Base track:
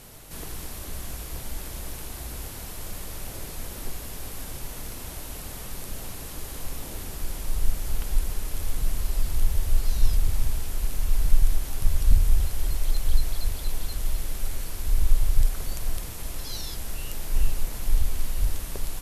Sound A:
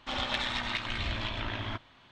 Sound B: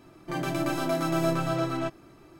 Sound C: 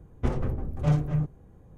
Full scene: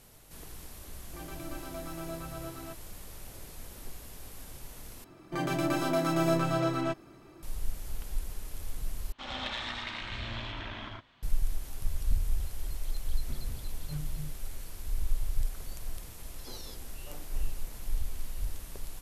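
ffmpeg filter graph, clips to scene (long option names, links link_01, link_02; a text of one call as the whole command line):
ffmpeg -i bed.wav -i cue0.wav -i cue1.wav -i cue2.wav -filter_complex "[2:a]asplit=2[link_01][link_02];[3:a]asplit=2[link_03][link_04];[0:a]volume=-10dB[link_05];[1:a]aecho=1:1:78.72|113.7:0.708|0.708[link_06];[link_03]equalizer=frequency=630:width=0.88:gain=-13[link_07];[link_04]highpass=frequency=260:width=0.5412,highpass=frequency=260:width=1.3066[link_08];[link_05]asplit=3[link_09][link_10][link_11];[link_09]atrim=end=5.044[link_12];[link_02]atrim=end=2.39,asetpts=PTS-STARTPTS,volume=-1dB[link_13];[link_10]atrim=start=7.426:end=9.124[link_14];[link_06]atrim=end=2.11,asetpts=PTS-STARTPTS,volume=-7.5dB[link_15];[link_11]atrim=start=11.226[link_16];[link_01]atrim=end=2.39,asetpts=PTS-STARTPTS,volume=-14.5dB,afade=type=in:duration=0.004:curve=hsin,afade=type=out:start_time=2.386:duration=0.004:curve=hsin,adelay=850[link_17];[link_07]atrim=end=1.77,asetpts=PTS-STARTPTS,volume=-14.5dB,afade=type=in:duration=0.004:curve=hsin,afade=type=out:start_time=1.766:duration=0.004:curve=hsin,adelay=13050[link_18];[link_08]atrim=end=1.77,asetpts=PTS-STARTPTS,volume=-17.5dB,afade=type=in:duration=0.004:curve=hsin,afade=type=out:start_time=1.766:duration=0.004:curve=hsin,adelay=16230[link_19];[link_12][link_13]acrossfade=duration=0.004:curve1=hsin:curve2=hsin[link_20];[link_20][link_14]acrossfade=duration=0.004:curve1=hsin:curve2=hsin[link_21];[link_21][link_15]acrossfade=duration=0.004:curve1=hsin:curve2=hsin[link_22];[link_22][link_16]acrossfade=duration=0.004:curve1=hsin:curve2=hsin[link_23];[link_23][link_17][link_18][link_19]amix=inputs=4:normalize=0" out.wav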